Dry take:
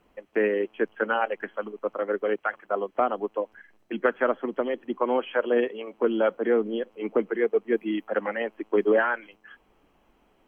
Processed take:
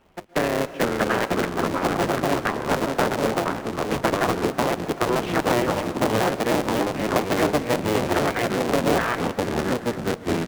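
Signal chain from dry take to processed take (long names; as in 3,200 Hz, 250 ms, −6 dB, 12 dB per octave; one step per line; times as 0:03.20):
sub-harmonics by changed cycles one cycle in 3, inverted
downward compressor, threshold −23 dBFS, peak gain reduction 7 dB
single-tap delay 815 ms −20.5 dB
on a send at −14.5 dB: convolution reverb RT60 2.4 s, pre-delay 108 ms
on the sum: delay with pitch and tempo change per echo 367 ms, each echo −4 semitones, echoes 3
windowed peak hold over 3 samples
level +4.5 dB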